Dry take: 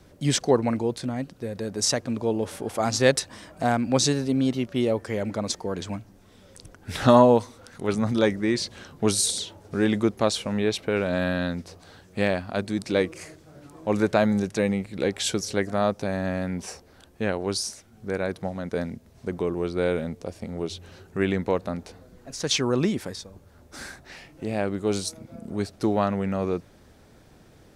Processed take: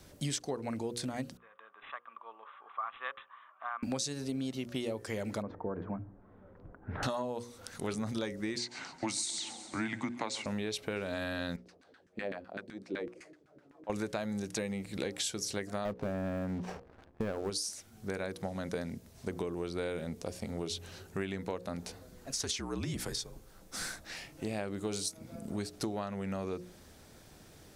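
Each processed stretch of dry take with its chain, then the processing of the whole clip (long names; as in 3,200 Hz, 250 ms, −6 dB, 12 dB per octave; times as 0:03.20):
0:01.37–0:03.83: four-pole ladder band-pass 1,200 Hz, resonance 85% + bad sample-rate conversion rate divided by 6×, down none, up filtered
0:05.42–0:07.03: low-pass filter 1,400 Hz 24 dB per octave + hum removal 49.56 Hz, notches 2
0:08.58–0:10.46: frequency shifter −100 Hz + loudspeaker in its box 210–7,600 Hz, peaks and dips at 240 Hz +4 dB, 440 Hz −8 dB, 860 Hz +9 dB, 2,100 Hz +10 dB, 3,300 Hz −7 dB, 5,400 Hz −5 dB + repeating echo 134 ms, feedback 59%, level −19.5 dB
0:11.56–0:13.90: parametric band 1,000 Hz −7 dB 1.2 octaves + auto-filter band-pass saw down 7.9 Hz 250–1,900 Hz
0:15.85–0:17.50: low-pass filter 1,200 Hz + leveller curve on the samples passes 2
0:22.32–0:24.15: downward compressor, threshold −25 dBFS + frequency shifter −59 Hz
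whole clip: high-shelf EQ 3,500 Hz +9 dB; mains-hum notches 60/120/180/240/300/360/420/480/540 Hz; downward compressor 12 to 1, threshold −29 dBFS; level −3 dB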